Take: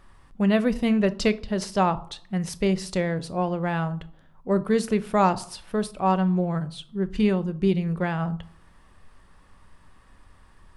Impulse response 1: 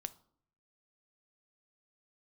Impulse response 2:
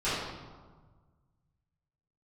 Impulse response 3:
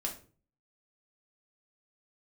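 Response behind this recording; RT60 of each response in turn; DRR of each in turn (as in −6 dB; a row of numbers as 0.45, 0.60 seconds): 1; 0.60, 1.5, 0.40 seconds; 12.5, −14.5, −1.0 decibels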